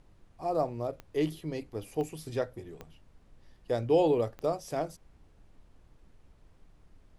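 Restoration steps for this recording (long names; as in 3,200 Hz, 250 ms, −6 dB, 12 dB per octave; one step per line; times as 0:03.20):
click removal
noise reduction from a noise print 16 dB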